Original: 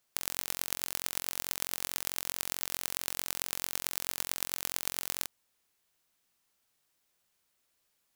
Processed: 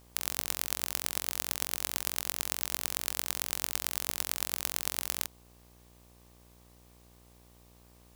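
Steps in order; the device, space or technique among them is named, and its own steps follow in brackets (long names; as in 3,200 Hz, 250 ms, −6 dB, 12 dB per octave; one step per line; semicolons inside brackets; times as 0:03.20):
video cassette with head-switching buzz (hum with harmonics 60 Hz, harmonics 20, −61 dBFS −5 dB per octave; white noise bed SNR 28 dB)
level +1.5 dB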